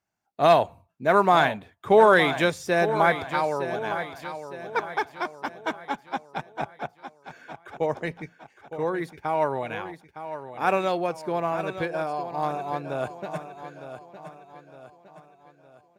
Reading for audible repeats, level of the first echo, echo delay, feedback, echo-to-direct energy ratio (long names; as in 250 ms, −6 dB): 4, −11.0 dB, 911 ms, 45%, −10.0 dB